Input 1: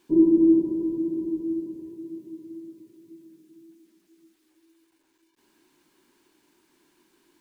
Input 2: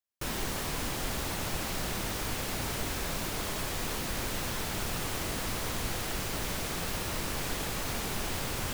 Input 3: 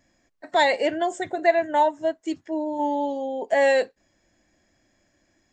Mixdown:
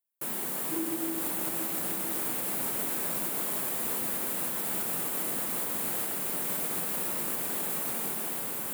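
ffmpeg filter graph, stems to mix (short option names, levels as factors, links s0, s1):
-filter_complex "[0:a]adelay=600,volume=0.178[s0];[1:a]dynaudnorm=f=220:g=9:m=1.58,aexciter=amount=7:drive=3.4:freq=7900,volume=0.75[s1];[s0][s1]amix=inputs=2:normalize=0,highpass=f=170:w=0.5412,highpass=f=170:w=1.3066,highshelf=f=2300:g=-7.5,alimiter=limit=0.0891:level=0:latency=1:release=179"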